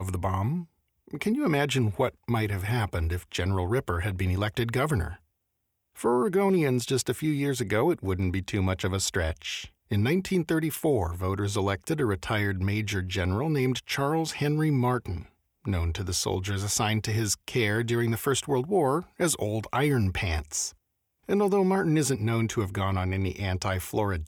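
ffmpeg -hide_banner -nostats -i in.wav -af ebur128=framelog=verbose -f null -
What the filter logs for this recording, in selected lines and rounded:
Integrated loudness:
  I:         -27.4 LUFS
  Threshold: -37.6 LUFS
Loudness range:
  LRA:         1.8 LU
  Threshold: -47.6 LUFS
  LRA low:   -28.5 LUFS
  LRA high:  -26.7 LUFS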